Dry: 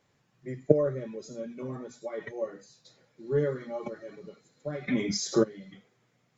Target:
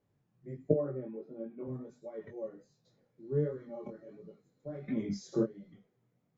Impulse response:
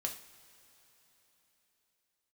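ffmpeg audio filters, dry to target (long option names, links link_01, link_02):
-filter_complex "[0:a]asettb=1/sr,asplit=3[link_01][link_02][link_03];[link_01]atrim=end=0.744[link_04];[link_02]atrim=start=0.74:end=1.68,asetpts=PTS-STARTPTS,afade=type=in:duration=0.004:curve=qsin,afade=type=out:start_time=0.936:duration=0.004:curve=qsin,highpass=170,equalizer=frequency=330:width_type=q:width=4:gain=8,equalizer=frequency=790:width_type=q:width=4:gain=10,equalizer=frequency=1300:width_type=q:width=4:gain=5,lowpass=frequency=2900:width=0.5412,lowpass=frequency=2900:width=1.3066[link_05];[link_03]atrim=start=1.676[link_06];[link_04][link_05]acrossfade=duration=0.004:curve1=hsin:curve2=qsin[link_07];[link_07][link_06]acrossfade=duration=0.004:curve1=qsin:curve2=hsin,flanger=delay=18:depth=5.8:speed=1.4,tiltshelf=frequency=830:gain=8,volume=-8dB"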